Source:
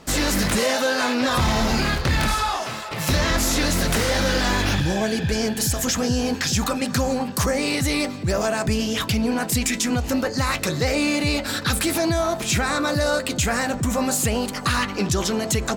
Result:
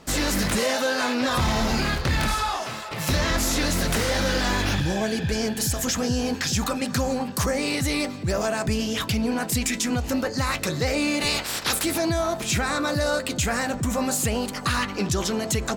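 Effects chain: 11.2–11.82 spectral limiter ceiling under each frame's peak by 20 dB; gain -2.5 dB

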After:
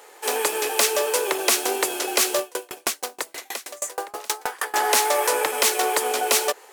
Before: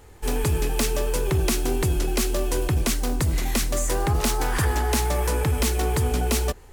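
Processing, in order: HPF 460 Hz 24 dB/oct; 2.39–4.74 dB-ramp tremolo decaying 6.3 Hz, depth 33 dB; gain +7.5 dB

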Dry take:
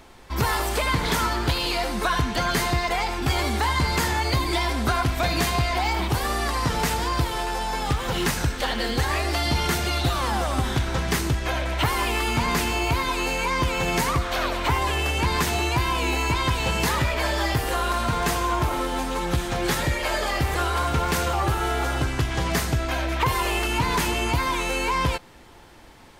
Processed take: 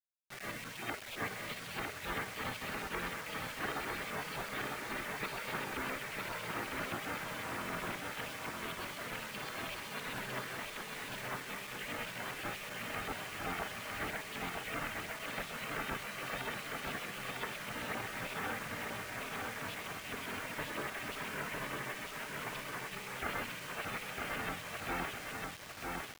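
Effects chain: tilt shelf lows -3.5 dB, about 930 Hz; small resonant body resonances 310/750 Hz, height 6 dB, ringing for 25 ms; LFO low-pass saw up 7.8 Hz 950–1900 Hz; spectral gate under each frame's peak -20 dB weak; high shelf 4500 Hz -8.5 dB; notch 540 Hz, Q 14; on a send: feedback echo 0.954 s, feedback 42%, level -3 dB; on the sum: bit-crush 7-bit; gain -5 dB

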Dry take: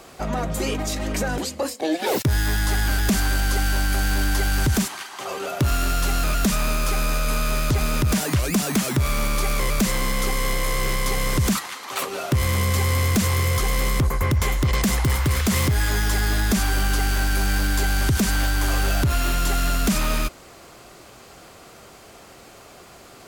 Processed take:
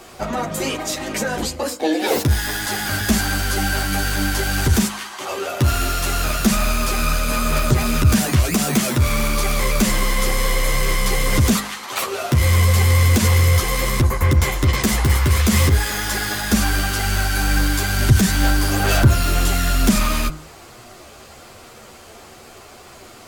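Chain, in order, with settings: chorus voices 6, 1.1 Hz, delay 11 ms, depth 3 ms; de-hum 51.65 Hz, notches 32; gain +7 dB

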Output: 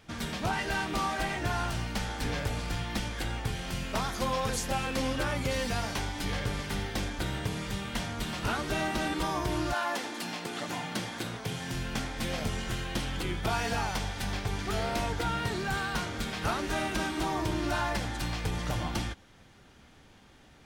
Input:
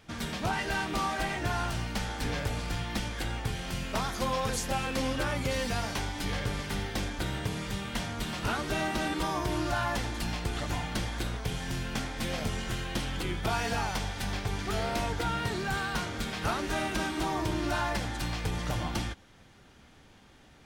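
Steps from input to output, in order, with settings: 9.72–11.73 HPF 280 Hz -> 88 Hz 24 dB/oct

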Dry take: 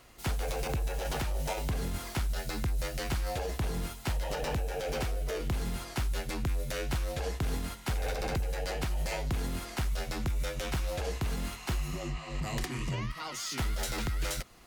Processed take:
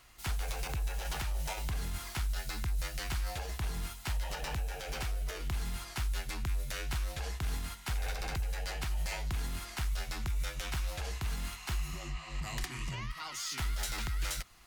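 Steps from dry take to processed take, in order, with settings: graphic EQ 125/250/500 Hz -4/-7/-10 dB; gain -1 dB

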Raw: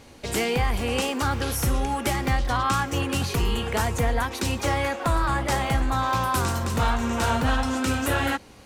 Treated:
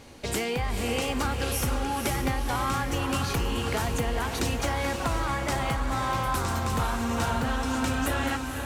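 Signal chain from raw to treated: compressor, threshold -25 dBFS, peak gain reduction 7.5 dB; on a send: diffused feedback echo 0.506 s, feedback 48%, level -5.5 dB

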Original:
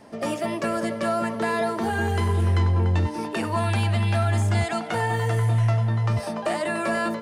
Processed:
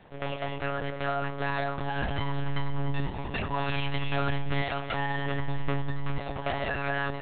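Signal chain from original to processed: high shelf 2100 Hz +9.5 dB; on a send: diffused feedback echo 0.497 s, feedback 45%, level -14 dB; on the sum: monotone LPC vocoder at 8 kHz 140 Hz; gain -6.5 dB

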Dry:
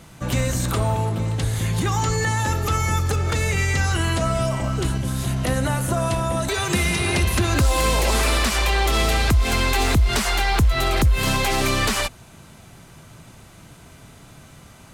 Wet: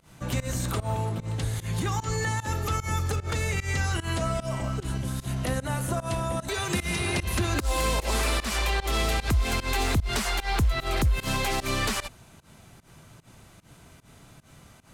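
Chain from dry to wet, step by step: pump 150 bpm, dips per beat 1, -23 dB, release 0.13 s; gain -6 dB

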